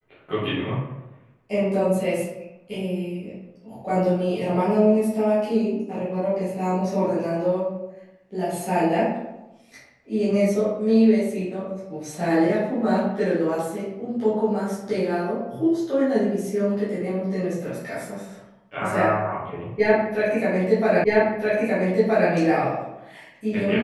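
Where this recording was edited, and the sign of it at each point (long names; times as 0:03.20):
0:21.04: the same again, the last 1.27 s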